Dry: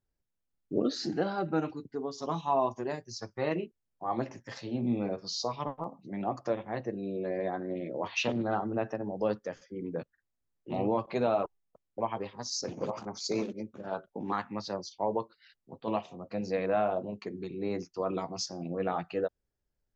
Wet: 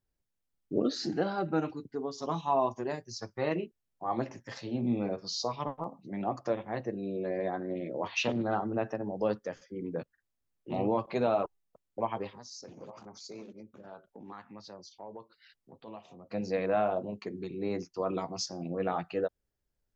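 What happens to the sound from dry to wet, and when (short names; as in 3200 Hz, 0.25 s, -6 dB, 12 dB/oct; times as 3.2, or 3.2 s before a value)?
12.38–16.3 compressor 2:1, threshold -53 dBFS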